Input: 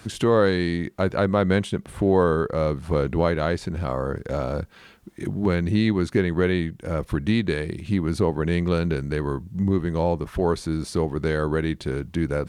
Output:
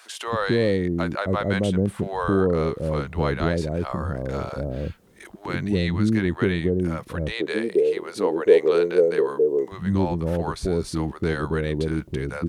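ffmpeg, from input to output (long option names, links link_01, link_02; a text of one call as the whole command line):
ffmpeg -i in.wav -filter_complex "[0:a]asettb=1/sr,asplit=3[link_01][link_02][link_03];[link_01]atrim=end=7.084[link_04];[link_02]atrim=start=7.08:end=9.45,asetpts=PTS-STARTPTS,afade=type=in:duration=0.004:curve=qsin,afade=type=out:start_time=2.366:duration=0.004:curve=qsin,highpass=frequency=450:width_type=q:width=4.9[link_05];[link_03]atrim=start=9.446[link_06];[link_04][link_05]acrossfade=duration=0.004:curve1=hsin:curve2=qsin[link_07];[link_07][link_06]acrossfade=duration=0.004:curve1=qsin:curve2=hsin,acrossover=split=600[link_08][link_09];[link_08]adelay=270[link_10];[link_10][link_09]amix=inputs=2:normalize=0" out.wav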